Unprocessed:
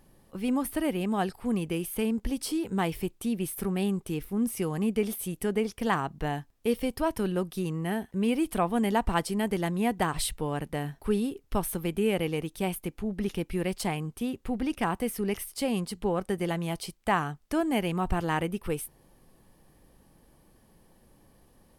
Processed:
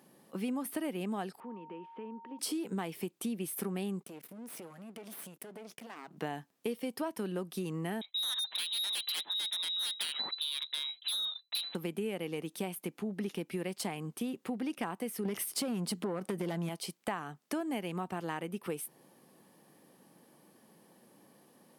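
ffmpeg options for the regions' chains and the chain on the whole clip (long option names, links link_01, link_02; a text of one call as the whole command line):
ffmpeg -i in.wav -filter_complex "[0:a]asettb=1/sr,asplit=3[link_01][link_02][link_03];[link_01]atrim=end=1.404[link_04];[link_02]atrim=start=1.4:end=2.39,asetpts=PTS-STARTPTS,afade=type=in:duration=0.004:curve=qsin,afade=type=out:start_time=0.986:duration=0.004:curve=qsin,acompressor=threshold=-39dB:ratio=4:attack=3.2:release=140:knee=1:detection=peak,aeval=exprs='val(0)+0.00355*sin(2*PI*920*n/s)':channel_layout=same,highpass=290,equalizer=frequency=340:width_type=q:width=4:gain=-3,equalizer=frequency=670:width_type=q:width=4:gain=-8,equalizer=frequency=1500:width_type=q:width=4:gain=-5,equalizer=frequency=2200:width_type=q:width=4:gain=-9,lowpass=frequency=2300:width=0.5412,lowpass=frequency=2300:width=1.3066[link_05];[link_03]atrim=start=2.386[link_06];[link_04][link_05]acrossfade=duration=0.004:curve1=hsin:curve2=qsin[link_07];[link_07][link_06]acrossfade=duration=0.004:curve1=qsin:curve2=hsin,asettb=1/sr,asplit=3[link_08][link_09][link_10];[link_08]atrim=end=4.034[link_11];[link_09]atrim=start=4.03:end=6.17,asetpts=PTS-STARTPTS,afade=type=in:duration=0.004:curve=qsin,afade=type=out:start_time=2.136:duration=0.004:curve=qsin,agate=range=-33dB:threshold=-46dB:ratio=3:release=100:detection=peak,acompressor=threshold=-37dB:ratio=16:attack=3.2:release=140:knee=1:detection=peak,aeval=exprs='max(val(0),0)':channel_layout=same[link_12];[link_10]atrim=start=6.166[link_13];[link_11][link_12]acrossfade=duration=0.004:curve1=hsin:curve2=qsin[link_14];[link_14][link_13]acrossfade=duration=0.004:curve1=qsin:curve2=hsin,asettb=1/sr,asplit=3[link_15][link_16][link_17];[link_15]atrim=end=8.014[link_18];[link_16]atrim=start=8.01:end=11.75,asetpts=PTS-STARTPTS,afade=type=in:duration=0.004:curve=qsin,afade=type=out:start_time=3.736:duration=0.004:curve=qsin,agate=range=-33dB:threshold=-49dB:ratio=3:release=100:detection=peak,lowpass=frequency=3400:width_type=q:width=0.5098,lowpass=frequency=3400:width_type=q:width=0.6013,lowpass=frequency=3400:width_type=q:width=0.9,lowpass=frequency=3400:width_type=q:width=2.563,afreqshift=-4000,aeval=exprs='0.0668*(abs(mod(val(0)/0.0668+3,4)-2)-1)':channel_layout=same[link_19];[link_17]atrim=start=11.746[link_20];[link_18][link_19]acrossfade=duration=0.004:curve1=hsin:curve2=qsin[link_21];[link_21][link_20]acrossfade=duration=0.004:curve1=qsin:curve2=hsin,asettb=1/sr,asplit=3[link_22][link_23][link_24];[link_22]atrim=end=15.254[link_25];[link_23]atrim=start=15.25:end=16.69,asetpts=PTS-STARTPTS,afade=type=in:duration=0.004:curve=qsin,afade=type=out:start_time=1.436:duration=0.004:curve=qsin,equalizer=frequency=170:width=0.55:gain=3.5,acompressor=threshold=-27dB:ratio=4:attack=3.2:release=140:knee=1:detection=peak,aeval=exprs='0.119*sin(PI/2*2*val(0)/0.119)':channel_layout=same[link_26];[link_24]atrim=start=16.686[link_27];[link_25][link_26]acrossfade=duration=0.004:curve1=hsin:curve2=qsin[link_28];[link_28][link_27]acrossfade=duration=0.004:curve1=qsin:curve2=hsin,highpass=frequency=170:width=0.5412,highpass=frequency=170:width=1.3066,acompressor=threshold=-34dB:ratio=6,volume=1dB" out.wav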